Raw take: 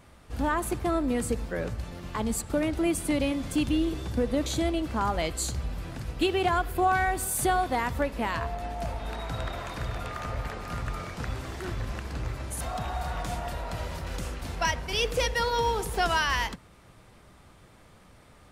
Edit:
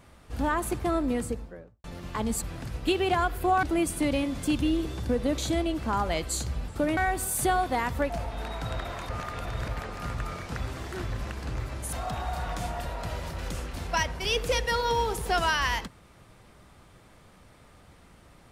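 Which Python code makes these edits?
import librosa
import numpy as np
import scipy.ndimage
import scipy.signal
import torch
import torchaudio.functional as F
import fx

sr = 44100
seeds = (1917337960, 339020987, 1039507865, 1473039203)

y = fx.studio_fade_out(x, sr, start_s=1.01, length_s=0.83)
y = fx.edit(y, sr, fx.swap(start_s=2.42, length_s=0.29, other_s=5.76, other_length_s=1.21),
    fx.cut(start_s=8.1, length_s=0.68),
    fx.reverse_span(start_s=9.77, length_s=0.59), tone=tone)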